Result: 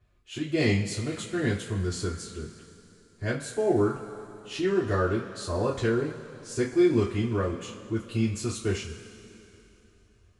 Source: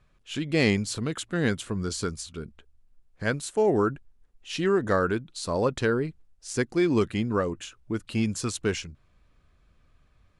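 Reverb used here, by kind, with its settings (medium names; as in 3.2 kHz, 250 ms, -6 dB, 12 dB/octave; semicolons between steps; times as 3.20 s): two-slope reverb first 0.26 s, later 3.1 s, from -19 dB, DRR -7 dB; trim -10.5 dB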